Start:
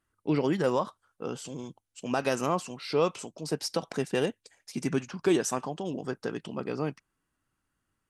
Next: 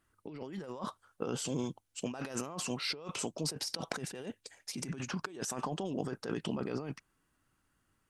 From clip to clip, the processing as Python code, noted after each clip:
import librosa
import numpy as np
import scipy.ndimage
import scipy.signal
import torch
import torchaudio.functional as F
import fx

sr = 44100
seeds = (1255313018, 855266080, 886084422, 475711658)

y = fx.over_compress(x, sr, threshold_db=-37.0, ratio=-1.0)
y = y * 10.0 ** (-2.0 / 20.0)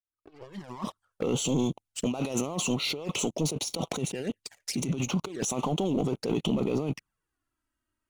y = fx.fade_in_head(x, sr, length_s=1.23)
y = fx.leveller(y, sr, passes=3)
y = fx.env_flanger(y, sr, rest_ms=3.2, full_db=-26.5)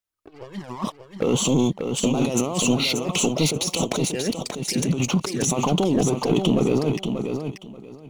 y = fx.echo_feedback(x, sr, ms=584, feedback_pct=20, wet_db=-6)
y = y * 10.0 ** (7.0 / 20.0)